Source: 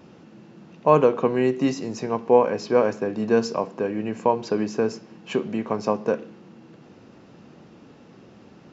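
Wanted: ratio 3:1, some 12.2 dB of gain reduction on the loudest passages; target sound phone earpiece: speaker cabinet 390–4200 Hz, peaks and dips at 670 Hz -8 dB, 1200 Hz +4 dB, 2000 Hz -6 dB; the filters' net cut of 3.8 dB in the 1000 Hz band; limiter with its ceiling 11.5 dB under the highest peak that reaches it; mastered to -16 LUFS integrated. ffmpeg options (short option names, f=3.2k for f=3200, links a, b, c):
-af "equalizer=f=1k:t=o:g=-4,acompressor=threshold=-29dB:ratio=3,alimiter=level_in=2dB:limit=-24dB:level=0:latency=1,volume=-2dB,highpass=390,equalizer=f=670:t=q:w=4:g=-8,equalizer=f=1.2k:t=q:w=4:g=4,equalizer=f=2k:t=q:w=4:g=-6,lowpass=f=4.2k:w=0.5412,lowpass=f=4.2k:w=1.3066,volume=25.5dB"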